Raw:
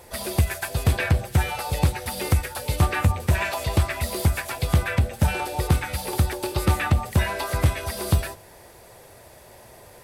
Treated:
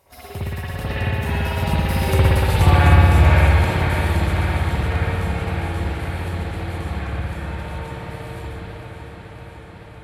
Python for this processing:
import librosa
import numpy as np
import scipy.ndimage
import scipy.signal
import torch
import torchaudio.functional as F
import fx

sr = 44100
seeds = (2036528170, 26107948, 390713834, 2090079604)

y = fx.doppler_pass(x, sr, speed_mps=32, closest_m=20.0, pass_at_s=2.44)
y = fx.rev_spring(y, sr, rt60_s=2.9, pass_ms=(57,), chirp_ms=30, drr_db=-10.0)
y = fx.echo_warbled(y, sr, ms=558, feedback_pct=78, rate_hz=2.8, cents=65, wet_db=-9.5)
y = y * librosa.db_to_amplitude(-1.0)